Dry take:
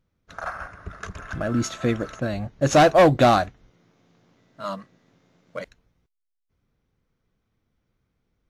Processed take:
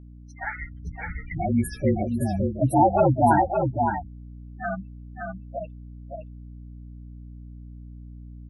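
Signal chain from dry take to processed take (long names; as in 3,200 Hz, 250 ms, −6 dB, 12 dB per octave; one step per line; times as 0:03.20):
partials spread apart or drawn together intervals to 115%
noise reduction from a noise print of the clip's start 21 dB
in parallel at +1 dB: downward compressor, threshold −31 dBFS, peak gain reduction 16.5 dB
on the sum: gate on every frequency bin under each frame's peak −10 dB strong
mains hum 60 Hz, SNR 17 dB
on a send: single-tap delay 566 ms −5 dB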